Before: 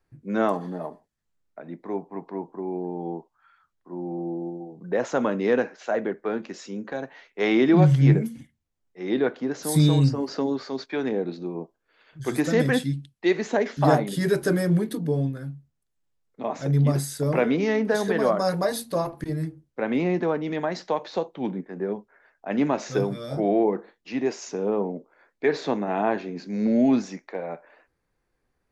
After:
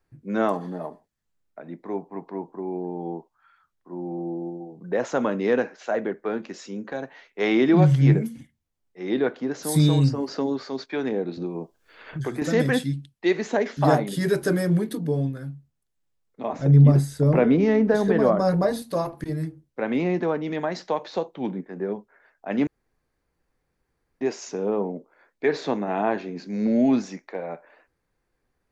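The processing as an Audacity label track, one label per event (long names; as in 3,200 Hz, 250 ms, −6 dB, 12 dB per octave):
11.370000	12.420000	multiband upward and downward compressor depth 100%
16.530000	18.820000	spectral tilt −2.5 dB per octave
22.670000	24.210000	fill with room tone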